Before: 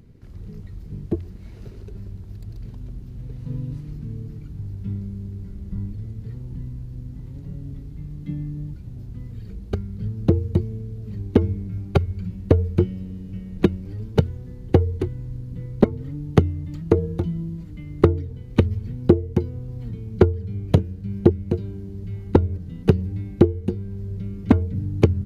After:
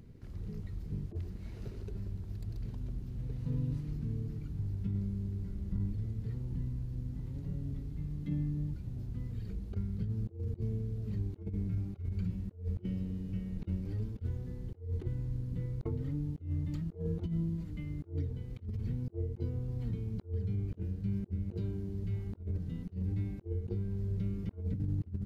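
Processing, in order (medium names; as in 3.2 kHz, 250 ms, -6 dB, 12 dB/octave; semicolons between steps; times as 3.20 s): self-modulated delay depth 0.069 ms; compressor with a negative ratio -27 dBFS, ratio -0.5; trim -8 dB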